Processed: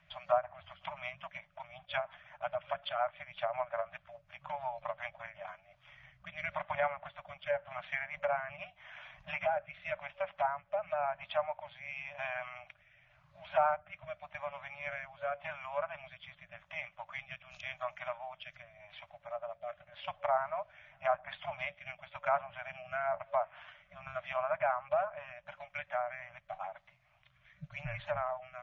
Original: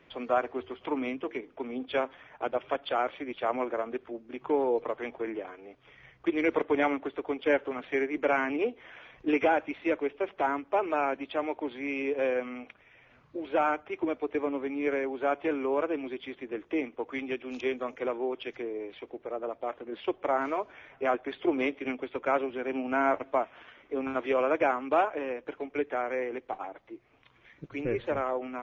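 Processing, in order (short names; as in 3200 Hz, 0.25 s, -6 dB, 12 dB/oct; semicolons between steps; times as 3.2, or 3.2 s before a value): rotary speaker horn 5.5 Hz, later 0.9 Hz, at 5.06; FFT band-reject 190–570 Hz; treble ducked by the level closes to 1400 Hz, closed at -29.5 dBFS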